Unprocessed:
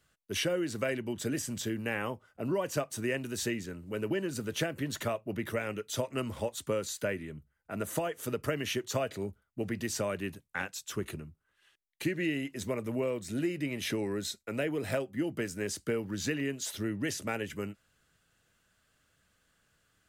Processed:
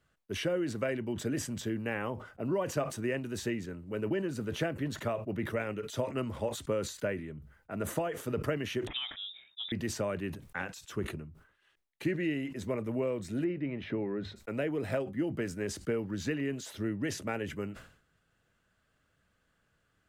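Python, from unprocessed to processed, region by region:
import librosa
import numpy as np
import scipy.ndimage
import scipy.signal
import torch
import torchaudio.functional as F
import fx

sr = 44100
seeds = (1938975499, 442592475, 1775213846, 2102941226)

y = fx.chain(x, sr, fx.air_absorb(metres=390.0),
    fx.freq_invert(carrier_hz=3700), at=(8.87, 9.72))
y = fx.chain(y, sr, fx.air_absorb(metres=360.0),
    fx.hum_notches(base_hz=50, count=3), at=(13.44, 14.36))
y = fx.high_shelf(y, sr, hz=3300.0, db=-11.5)
y = fx.sustainer(y, sr, db_per_s=100.0)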